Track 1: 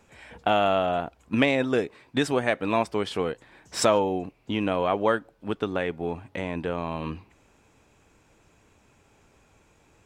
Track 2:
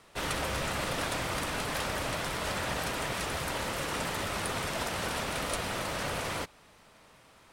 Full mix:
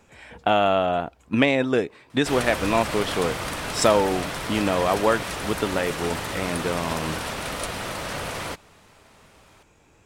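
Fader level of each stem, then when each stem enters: +2.5 dB, +3.0 dB; 0.00 s, 2.10 s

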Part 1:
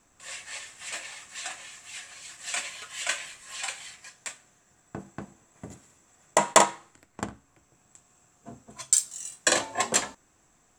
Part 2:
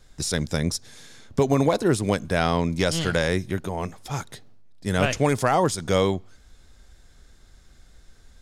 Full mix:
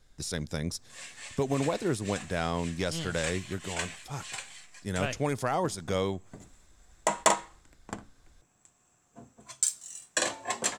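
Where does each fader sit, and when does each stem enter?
-5.5 dB, -8.5 dB; 0.70 s, 0.00 s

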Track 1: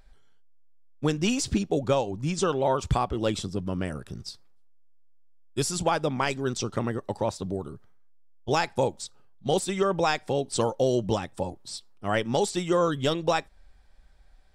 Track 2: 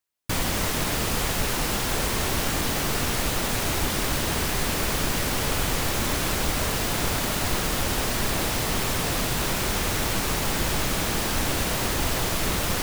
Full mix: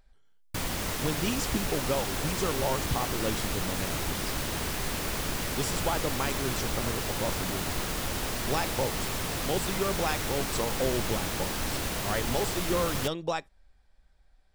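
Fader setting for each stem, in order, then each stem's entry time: -6.0 dB, -6.5 dB; 0.00 s, 0.25 s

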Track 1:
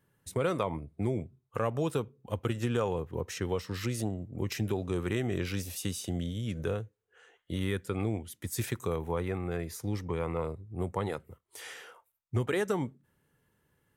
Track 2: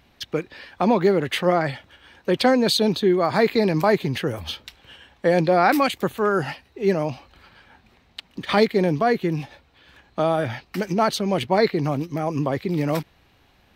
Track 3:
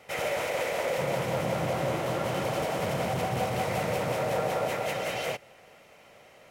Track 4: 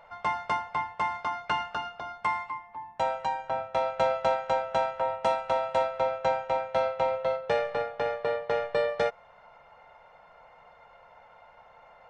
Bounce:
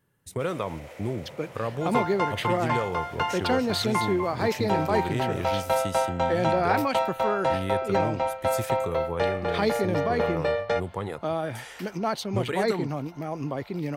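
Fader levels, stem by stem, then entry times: +0.5 dB, -7.5 dB, -15.5 dB, +1.0 dB; 0.00 s, 1.05 s, 0.30 s, 1.70 s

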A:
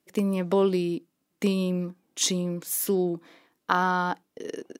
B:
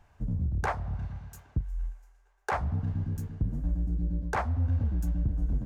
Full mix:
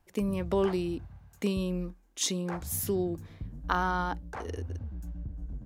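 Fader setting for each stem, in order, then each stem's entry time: -5.0 dB, -10.5 dB; 0.00 s, 0.00 s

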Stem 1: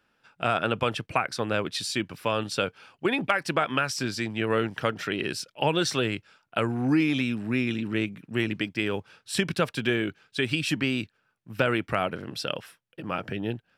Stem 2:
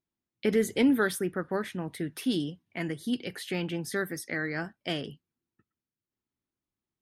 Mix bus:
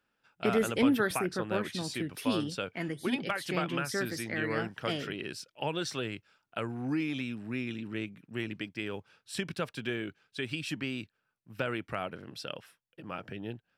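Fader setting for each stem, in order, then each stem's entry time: -9.0 dB, -2.5 dB; 0.00 s, 0.00 s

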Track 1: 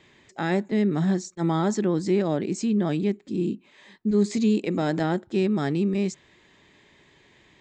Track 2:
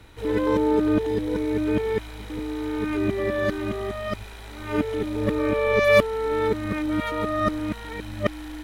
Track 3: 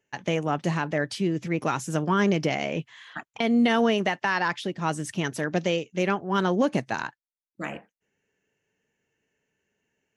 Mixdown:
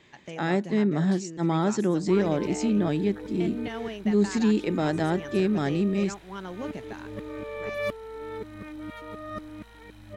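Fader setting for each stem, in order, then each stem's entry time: -1.0 dB, -13.5 dB, -14.0 dB; 0.00 s, 1.90 s, 0.00 s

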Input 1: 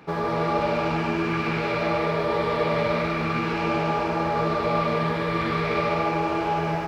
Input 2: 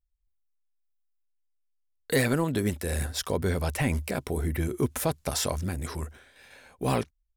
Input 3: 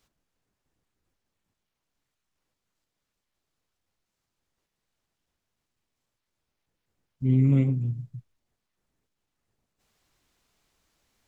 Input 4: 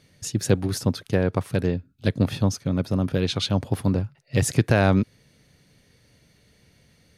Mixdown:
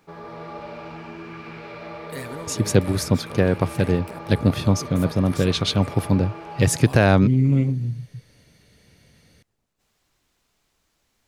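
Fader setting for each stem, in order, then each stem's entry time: -12.5 dB, -10.5 dB, +2.5 dB, +3.0 dB; 0.00 s, 0.00 s, 0.00 s, 2.25 s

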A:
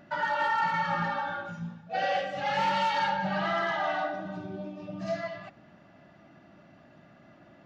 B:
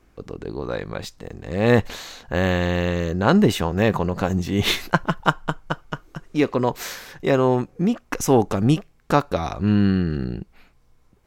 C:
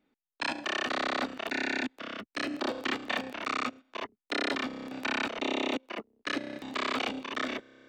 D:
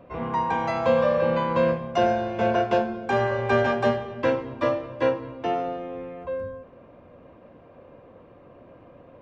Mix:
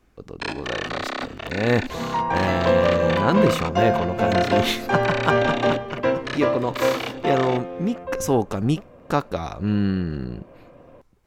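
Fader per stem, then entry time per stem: mute, -3.5 dB, +2.0 dB, +1.5 dB; mute, 0.00 s, 0.00 s, 1.80 s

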